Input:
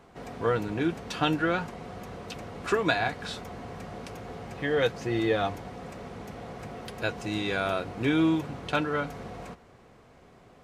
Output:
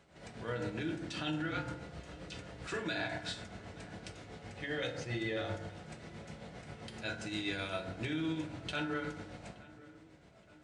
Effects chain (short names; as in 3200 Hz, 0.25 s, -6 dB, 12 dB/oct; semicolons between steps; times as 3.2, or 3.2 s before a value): reverb RT60 0.80 s, pre-delay 3 ms, DRR 0.5 dB; tremolo 7.6 Hz, depth 52%; limiter -18.5 dBFS, peak gain reduction 10.5 dB; 1.51–2.74 frequency shift -32 Hz; graphic EQ 125/250/500/1000/4000/8000 Hz -7/-10/-7/-12/+4/+7 dB; downsampling 22050 Hz; HPF 73 Hz; high shelf 2900 Hz -12 dB; darkening echo 0.872 s, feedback 60%, low-pass 2100 Hz, level -20 dB; gain +1 dB